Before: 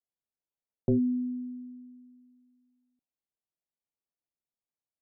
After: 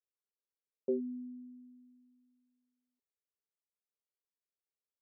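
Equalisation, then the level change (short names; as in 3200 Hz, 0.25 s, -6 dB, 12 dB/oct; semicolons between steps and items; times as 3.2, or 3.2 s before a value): ladder band-pass 430 Hz, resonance 65%; fixed phaser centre 500 Hz, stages 8; +5.5 dB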